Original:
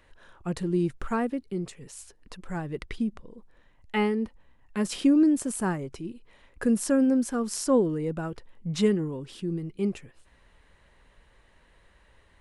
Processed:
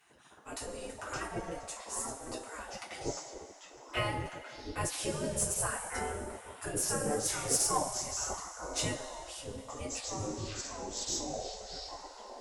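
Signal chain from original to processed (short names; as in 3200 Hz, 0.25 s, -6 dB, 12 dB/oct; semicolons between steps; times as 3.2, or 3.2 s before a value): two-slope reverb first 0.23 s, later 2.5 s, from -18 dB, DRR -6.5 dB; echoes that change speed 0.331 s, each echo -6 st, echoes 3, each echo -6 dB; band shelf 2100 Hz -8.5 dB 2.5 oct; spectral gate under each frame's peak -20 dB weak; added harmonics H 3 -12 dB, 5 -27 dB, 8 -32 dB, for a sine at 0.5 dBFS; gain +7.5 dB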